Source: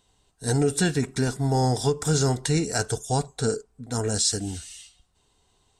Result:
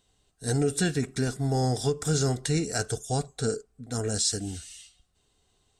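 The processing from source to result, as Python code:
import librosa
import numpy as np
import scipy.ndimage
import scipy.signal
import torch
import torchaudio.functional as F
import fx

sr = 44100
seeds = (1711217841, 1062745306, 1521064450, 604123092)

y = fx.peak_eq(x, sr, hz=930.0, db=-11.5, octaves=0.21)
y = y * 10.0 ** (-3.0 / 20.0)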